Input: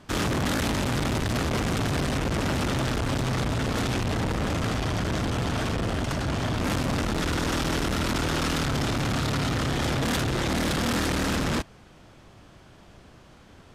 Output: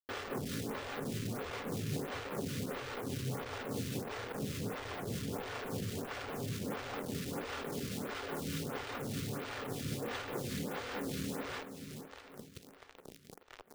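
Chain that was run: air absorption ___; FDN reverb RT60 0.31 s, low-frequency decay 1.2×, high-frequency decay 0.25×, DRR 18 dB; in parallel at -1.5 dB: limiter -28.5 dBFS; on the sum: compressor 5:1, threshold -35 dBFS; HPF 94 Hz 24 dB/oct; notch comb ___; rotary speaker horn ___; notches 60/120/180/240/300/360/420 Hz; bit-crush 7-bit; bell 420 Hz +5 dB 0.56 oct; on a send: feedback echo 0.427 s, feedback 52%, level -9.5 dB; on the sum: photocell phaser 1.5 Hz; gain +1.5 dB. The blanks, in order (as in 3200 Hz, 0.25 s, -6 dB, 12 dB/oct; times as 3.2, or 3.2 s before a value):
99 m, 320 Hz, 5 Hz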